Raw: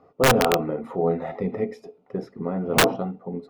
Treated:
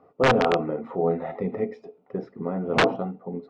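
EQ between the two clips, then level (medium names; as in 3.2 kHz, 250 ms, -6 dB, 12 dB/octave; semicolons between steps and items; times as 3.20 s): distance through air 130 m; bass shelf 98 Hz -7.5 dB; treble shelf 7 kHz -10 dB; 0.0 dB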